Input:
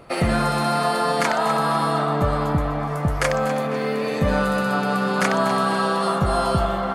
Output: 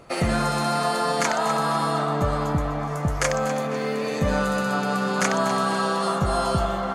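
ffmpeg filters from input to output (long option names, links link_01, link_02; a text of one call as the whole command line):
ffmpeg -i in.wav -af "equalizer=frequency=6600:width_type=o:width=0.54:gain=9.5,volume=-2.5dB" out.wav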